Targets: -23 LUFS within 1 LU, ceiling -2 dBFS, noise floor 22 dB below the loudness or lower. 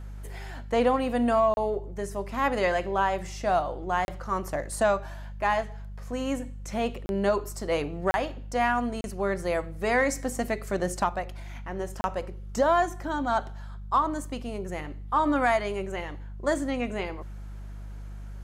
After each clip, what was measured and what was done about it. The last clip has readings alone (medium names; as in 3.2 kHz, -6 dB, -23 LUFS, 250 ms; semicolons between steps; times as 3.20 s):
dropouts 6; longest dropout 31 ms; hum 50 Hz; highest harmonic 200 Hz; hum level -36 dBFS; loudness -28.0 LUFS; peak level -13.5 dBFS; loudness target -23.0 LUFS
-> interpolate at 1.54/4.05/7.06/8.11/9.01/12.01 s, 31 ms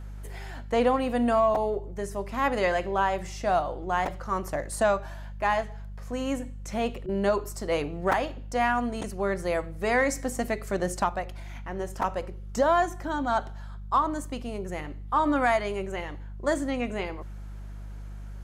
dropouts 0; hum 50 Hz; highest harmonic 200 Hz; hum level -36 dBFS
-> de-hum 50 Hz, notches 4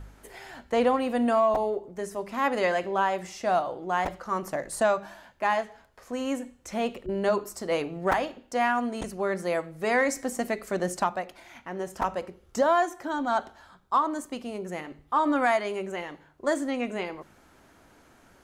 hum not found; loudness -28.0 LUFS; peak level -11.5 dBFS; loudness target -23.0 LUFS
-> trim +5 dB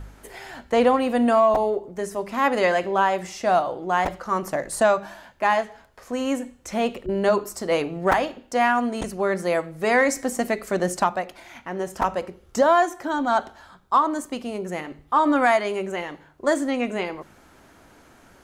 loudness -23.0 LUFS; peak level -6.5 dBFS; noise floor -53 dBFS